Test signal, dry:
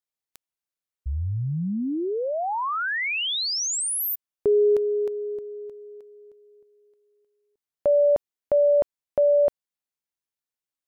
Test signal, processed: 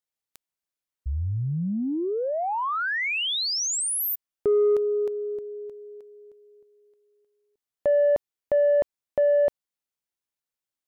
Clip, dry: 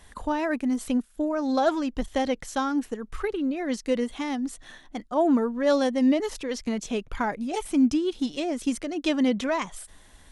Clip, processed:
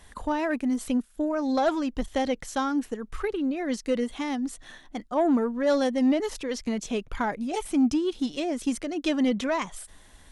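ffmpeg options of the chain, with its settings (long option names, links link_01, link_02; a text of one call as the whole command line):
ffmpeg -i in.wav -af "asoftclip=type=tanh:threshold=-14dB" out.wav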